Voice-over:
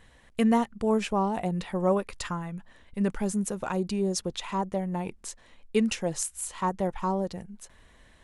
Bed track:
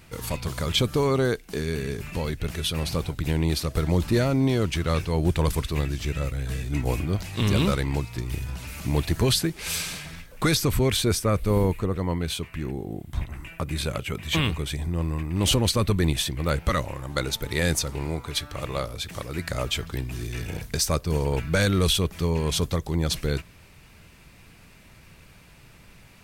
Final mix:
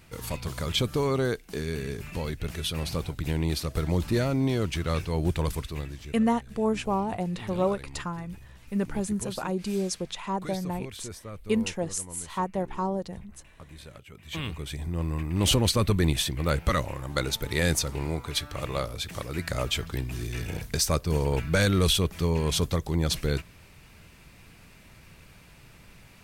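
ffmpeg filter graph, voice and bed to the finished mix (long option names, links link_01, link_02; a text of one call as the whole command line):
ffmpeg -i stem1.wav -i stem2.wav -filter_complex "[0:a]adelay=5750,volume=-1dB[link_01];[1:a]volume=13.5dB,afade=type=out:start_time=5.28:duration=0.95:silence=0.188365,afade=type=in:start_time=14.12:duration=1.15:silence=0.141254[link_02];[link_01][link_02]amix=inputs=2:normalize=0" out.wav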